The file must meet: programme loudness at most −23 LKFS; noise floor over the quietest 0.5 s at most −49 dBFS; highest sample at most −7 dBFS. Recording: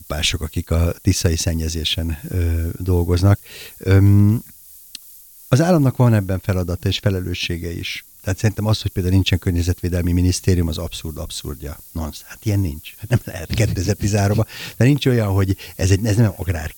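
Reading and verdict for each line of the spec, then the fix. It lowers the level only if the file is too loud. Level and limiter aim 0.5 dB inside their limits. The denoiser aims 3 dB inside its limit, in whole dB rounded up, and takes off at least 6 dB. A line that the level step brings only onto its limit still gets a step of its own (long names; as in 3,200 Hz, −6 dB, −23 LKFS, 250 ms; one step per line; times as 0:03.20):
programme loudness −19.5 LKFS: out of spec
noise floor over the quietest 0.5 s −43 dBFS: out of spec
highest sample −3.5 dBFS: out of spec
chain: broadband denoise 6 dB, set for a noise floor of −43 dBFS
level −4 dB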